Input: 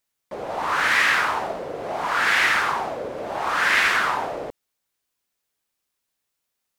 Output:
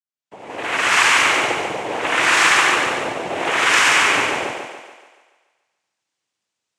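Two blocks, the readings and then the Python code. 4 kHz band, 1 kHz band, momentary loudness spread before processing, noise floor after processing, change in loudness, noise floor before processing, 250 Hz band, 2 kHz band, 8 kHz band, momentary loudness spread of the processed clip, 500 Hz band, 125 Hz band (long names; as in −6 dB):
+8.5 dB, +4.0 dB, 14 LU, −81 dBFS, +5.5 dB, −80 dBFS, +8.0 dB, +4.5 dB, +12.5 dB, 13 LU, +4.5 dB, +4.5 dB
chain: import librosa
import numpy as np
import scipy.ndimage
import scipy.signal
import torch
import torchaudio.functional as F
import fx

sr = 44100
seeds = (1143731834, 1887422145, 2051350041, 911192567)

p1 = fx.fade_in_head(x, sr, length_s=0.95)
p2 = np.where(np.abs(p1) >= 10.0 ** (-29.0 / 20.0), p1, 0.0)
p3 = p1 + F.gain(torch.from_numpy(p2), -12.0).numpy()
p4 = fx.noise_vocoder(p3, sr, seeds[0], bands=4)
p5 = fx.echo_thinned(p4, sr, ms=143, feedback_pct=53, hz=230.0, wet_db=-3.5)
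y = F.gain(torch.from_numpy(p5), 1.5).numpy()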